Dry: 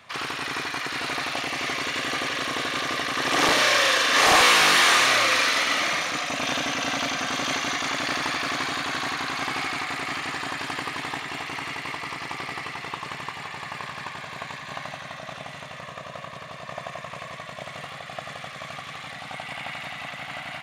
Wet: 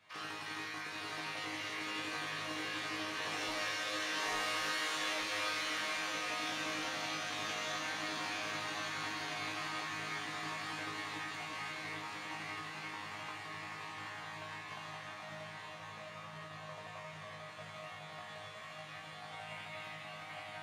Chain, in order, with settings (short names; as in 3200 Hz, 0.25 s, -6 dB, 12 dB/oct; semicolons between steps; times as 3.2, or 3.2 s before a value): compressor, threshold -22 dBFS, peak gain reduction 8.5 dB; resonator bank G#2 fifth, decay 0.5 s; diffused feedback echo 0.966 s, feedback 67%, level -5.5 dB; gain +1 dB